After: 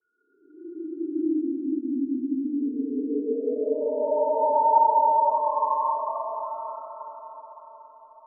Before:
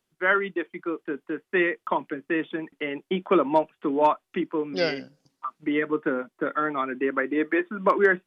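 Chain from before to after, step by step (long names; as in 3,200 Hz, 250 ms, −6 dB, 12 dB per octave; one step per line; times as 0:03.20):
spectral peaks only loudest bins 2
extreme stretch with random phases 19×, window 0.05 s, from 0:03.80
all-pass dispersion highs, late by 65 ms, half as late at 2,800 Hz
on a send: feedback delay with all-pass diffusion 578 ms, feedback 44%, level −8 dB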